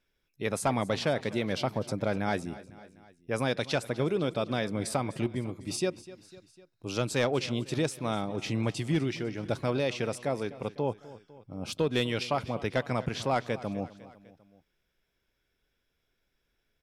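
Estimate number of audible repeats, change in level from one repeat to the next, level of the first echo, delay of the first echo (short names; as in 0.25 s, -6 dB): 3, -4.5 dB, -18.0 dB, 0.251 s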